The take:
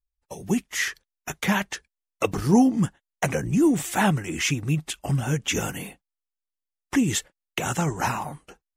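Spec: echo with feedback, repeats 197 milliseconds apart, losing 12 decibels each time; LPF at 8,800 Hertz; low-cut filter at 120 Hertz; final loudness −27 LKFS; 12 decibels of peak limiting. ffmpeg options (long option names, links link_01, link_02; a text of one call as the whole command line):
ffmpeg -i in.wav -af "highpass=120,lowpass=8800,alimiter=limit=-18.5dB:level=0:latency=1,aecho=1:1:197|394|591:0.251|0.0628|0.0157,volume=2.5dB" out.wav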